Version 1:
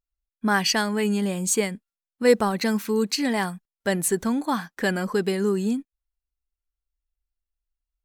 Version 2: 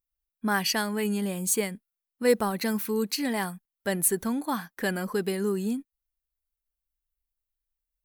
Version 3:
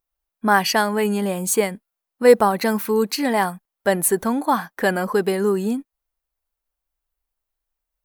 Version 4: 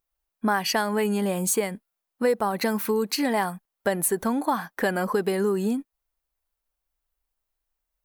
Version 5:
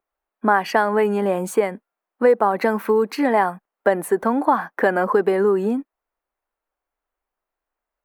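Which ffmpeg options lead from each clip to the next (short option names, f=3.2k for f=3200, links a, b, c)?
-af "aexciter=amount=4.1:drive=2.4:freq=9.7k,volume=-4.5dB"
-af "equalizer=f=780:w=0.6:g=9.5,volume=3.5dB"
-af "acompressor=threshold=-21dB:ratio=4"
-filter_complex "[0:a]acrossover=split=240 2100:gain=0.158 1 0.126[a][b][c];[a][b][c]amix=inputs=3:normalize=0,volume=8dB"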